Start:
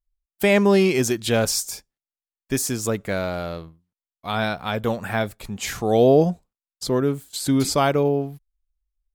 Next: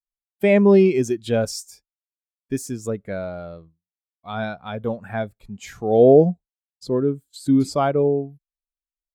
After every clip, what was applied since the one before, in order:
every bin expanded away from the loudest bin 1.5 to 1
level +3 dB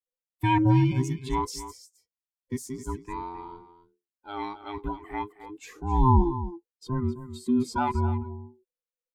frequency inversion band by band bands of 500 Hz
single-tap delay 263 ms −13 dB
level −7 dB

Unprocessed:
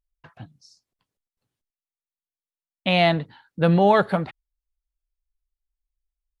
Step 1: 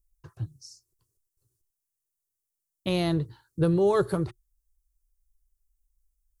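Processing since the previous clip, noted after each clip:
bass and treble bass +10 dB, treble +6 dB
downward compressor 4 to 1, threshold −14 dBFS, peak gain reduction 6 dB
drawn EQ curve 120 Hz 0 dB, 230 Hz −17 dB, 360 Hz +6 dB, 730 Hz −14 dB, 1,100 Hz −4 dB, 2,100 Hz −14 dB, 3,400 Hz −11 dB, 5,800 Hz +2 dB, 8,700 Hz +6 dB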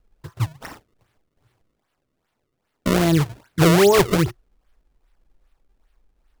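in parallel at 0 dB: brickwall limiter −21.5 dBFS, peak gain reduction 7.5 dB
on the sum: sample-and-hold swept by an LFO 31×, swing 160% 2.5 Hz
level +4.5 dB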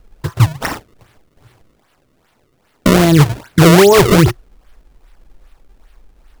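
boost into a limiter +17.5 dB
level −1 dB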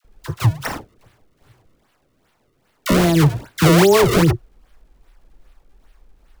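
all-pass dispersion lows, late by 47 ms, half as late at 810 Hz
level −5 dB

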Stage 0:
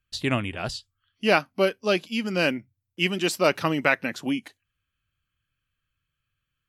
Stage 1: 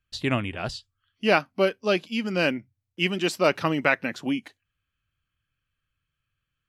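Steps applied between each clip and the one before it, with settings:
high-shelf EQ 7,300 Hz −8.5 dB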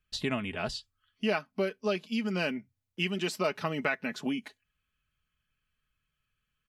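comb filter 4.7 ms, depth 52%
downward compressor 2.5 to 1, threshold −29 dBFS, peak gain reduction 11 dB
level −1 dB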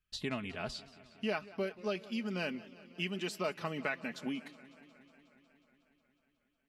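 feedback echo with a swinging delay time 182 ms, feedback 76%, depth 134 cents, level −19.5 dB
level −6 dB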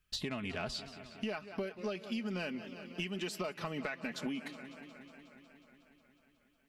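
downward compressor 10 to 1, threshold −41 dBFS, peak gain reduction 12 dB
soft clipping −33.5 dBFS, distortion −22 dB
level +7.5 dB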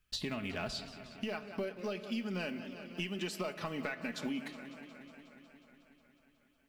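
one scale factor per block 7 bits
on a send at −12 dB: convolution reverb RT60 0.90 s, pre-delay 3 ms

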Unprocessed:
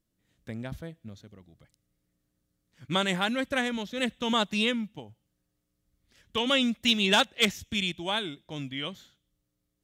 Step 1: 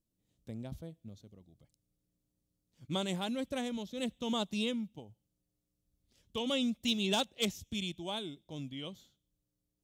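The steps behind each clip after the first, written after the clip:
parametric band 1,700 Hz −14.5 dB 1.2 octaves
level −5 dB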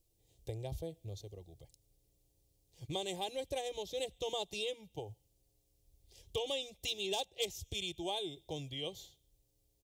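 comb filter 2.5 ms, depth 36%
downward compressor 4 to 1, threshold −44 dBFS, peak gain reduction 15 dB
phaser with its sweep stopped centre 570 Hz, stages 4
level +10.5 dB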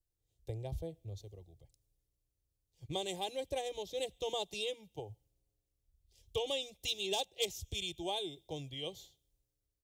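multiband upward and downward expander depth 40%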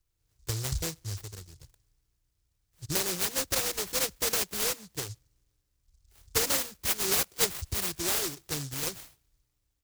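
short delay modulated by noise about 5,800 Hz, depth 0.44 ms
level +8.5 dB

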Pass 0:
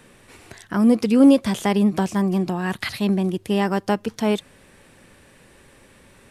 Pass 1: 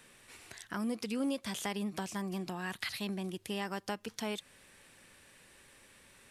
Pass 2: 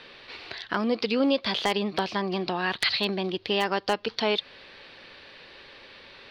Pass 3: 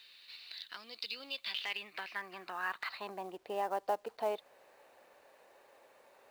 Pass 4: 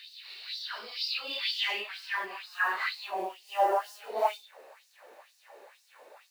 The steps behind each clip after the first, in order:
tilt shelving filter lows −5.5 dB, about 1,100 Hz; downward compressor 2 to 1, threshold −28 dBFS, peak gain reduction 8 dB; level −9 dB
drawn EQ curve 200 Hz 0 dB, 440 Hz +9 dB, 1,900 Hz +6 dB, 4,500 Hz +12 dB, 7,600 Hz −26 dB; wave folding −17 dBFS; level +5.5 dB
band-pass filter sweep 3,900 Hz → 700 Hz, 0:01.17–0:03.48; notch filter 3,300 Hz, Q 8.5; log-companded quantiser 6 bits; level −3.5 dB
random phases in long frames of 200 ms; auto-filter high-pass sine 2.1 Hz 350–5,500 Hz; level +6 dB

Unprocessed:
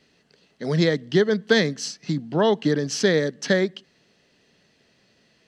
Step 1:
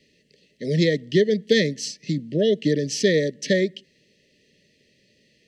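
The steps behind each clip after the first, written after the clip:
Chebyshev band-stop filter 610–1,800 Hz, order 5
level +1 dB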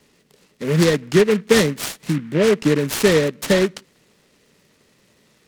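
short delay modulated by noise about 1,700 Hz, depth 0.074 ms
level +4 dB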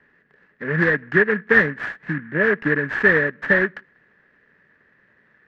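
low-pass with resonance 1,700 Hz, resonance Q 13
level −6 dB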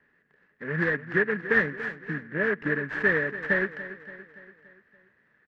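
repeating echo 286 ms, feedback 53%, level −14 dB
level −7.5 dB

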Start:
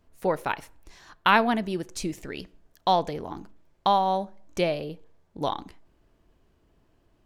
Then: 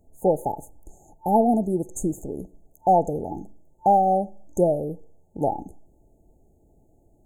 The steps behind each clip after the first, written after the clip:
brick-wall band-stop 890–6,300 Hz
level +5.5 dB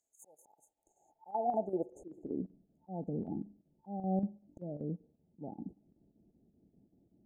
band-pass filter sweep 6,300 Hz → 210 Hz, 0:00.24–0:02.51
volume swells 339 ms
square-wave tremolo 5.2 Hz, depth 60%, duty 80%
level +1 dB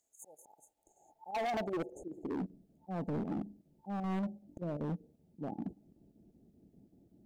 hard clipping −37.5 dBFS, distortion −6 dB
level +5 dB

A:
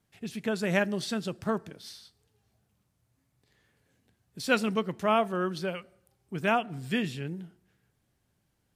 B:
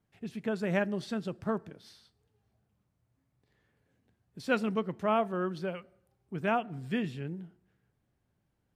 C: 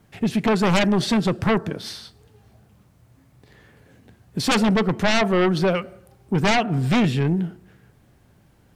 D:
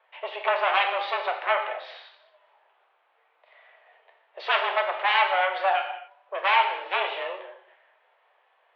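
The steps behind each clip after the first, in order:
high-shelf EQ 2,900 Hz −11.5 dB; level −2 dB
in parallel at −1.5 dB: downward compressor, threshold −39 dBFS, peak gain reduction 15.5 dB; on the sum: sine wavefolder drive 12 dB, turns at −14.5 dBFS
reverb whose tail is shaped and stops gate 300 ms falling, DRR 3 dB; single-sideband voice off tune +190 Hz 420–3,100 Hz; level −1.5 dB

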